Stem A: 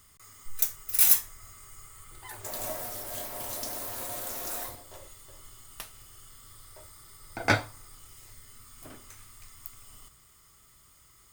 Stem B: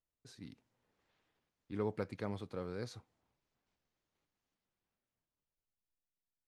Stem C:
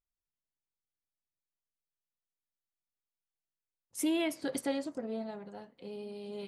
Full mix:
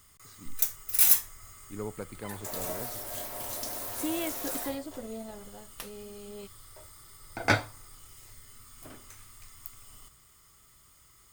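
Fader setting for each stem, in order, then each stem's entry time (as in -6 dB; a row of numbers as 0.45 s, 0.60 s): -0.5 dB, -0.5 dB, -2.5 dB; 0.00 s, 0.00 s, 0.00 s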